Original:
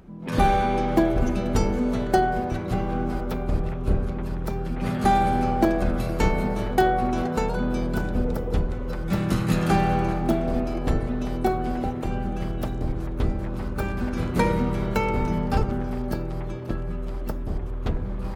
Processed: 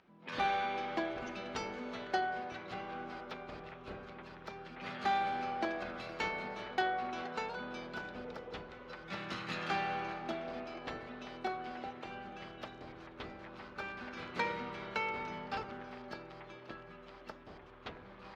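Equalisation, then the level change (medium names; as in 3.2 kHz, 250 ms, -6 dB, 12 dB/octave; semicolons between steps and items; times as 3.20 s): band-pass filter 5.8 kHz, Q 0.52; distance through air 240 m; +1.5 dB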